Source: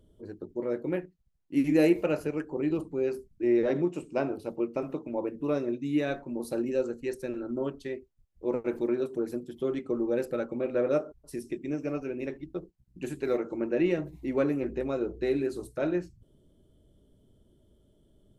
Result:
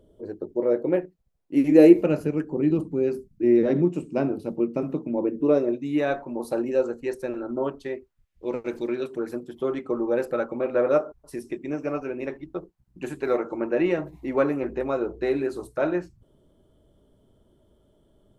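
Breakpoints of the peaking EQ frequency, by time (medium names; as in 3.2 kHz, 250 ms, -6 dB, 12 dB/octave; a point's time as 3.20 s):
peaking EQ +10.5 dB 1.9 oct
1.70 s 560 Hz
2.13 s 190 Hz
5.11 s 190 Hz
5.86 s 880 Hz
7.92 s 880 Hz
8.73 s 5.7 kHz
9.40 s 1 kHz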